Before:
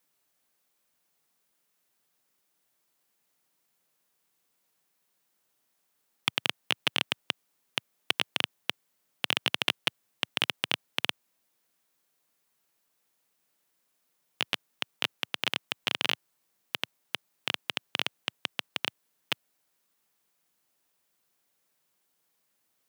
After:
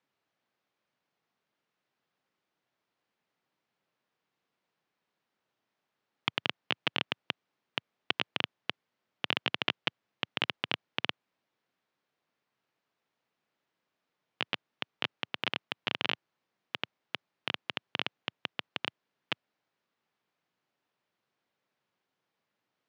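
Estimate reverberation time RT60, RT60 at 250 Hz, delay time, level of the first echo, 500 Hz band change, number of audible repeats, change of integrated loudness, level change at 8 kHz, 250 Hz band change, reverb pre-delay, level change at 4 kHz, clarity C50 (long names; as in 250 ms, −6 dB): no reverb audible, no reverb audible, no echo audible, no echo audible, −0.5 dB, no echo audible, −3.5 dB, below −15 dB, −0.5 dB, no reverb audible, −4.5 dB, no reverb audible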